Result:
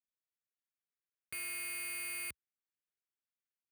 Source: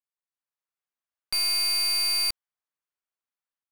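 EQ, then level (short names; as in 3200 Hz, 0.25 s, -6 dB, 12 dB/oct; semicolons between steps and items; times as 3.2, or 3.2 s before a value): HPF 67 Hz 24 dB/oct; high shelf 5000 Hz -4.5 dB; fixed phaser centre 2100 Hz, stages 4; -5.0 dB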